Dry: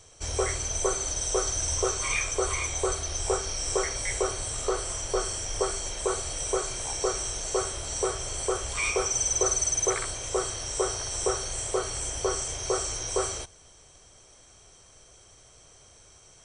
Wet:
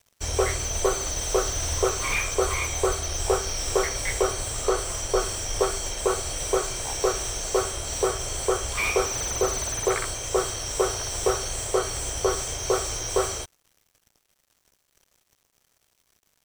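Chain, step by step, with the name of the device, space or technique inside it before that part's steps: early transistor amplifier (crossover distortion -48.5 dBFS; slew limiter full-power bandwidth 120 Hz); gain +5 dB

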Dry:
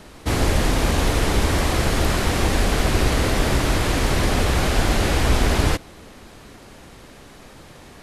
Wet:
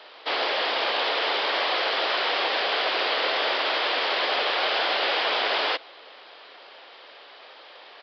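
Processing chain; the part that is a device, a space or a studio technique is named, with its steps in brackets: musical greeting card (downsampling 11025 Hz; HPF 500 Hz 24 dB/oct; bell 3200 Hz +6 dB 0.49 oct)

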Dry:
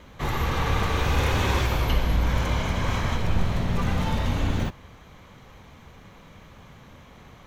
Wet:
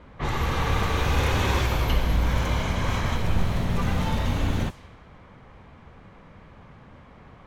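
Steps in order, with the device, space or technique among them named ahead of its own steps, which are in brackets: cassette deck with a dynamic noise filter (white noise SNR 29 dB; low-pass opened by the level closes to 1700 Hz, open at -20 dBFS)

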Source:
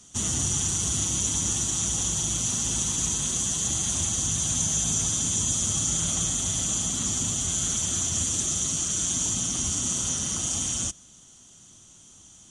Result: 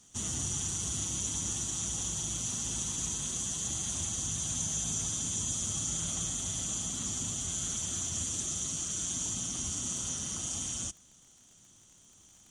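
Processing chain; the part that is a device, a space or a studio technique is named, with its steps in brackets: vinyl LP (crackle 57/s -40 dBFS; pink noise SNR 42 dB); gain -8 dB

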